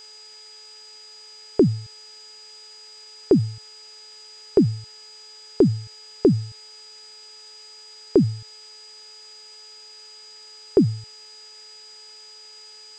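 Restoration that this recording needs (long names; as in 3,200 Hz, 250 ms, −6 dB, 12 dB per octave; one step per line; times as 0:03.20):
hum removal 429.6 Hz, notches 9
notch filter 4,900 Hz, Q 30
noise reduction from a noise print 24 dB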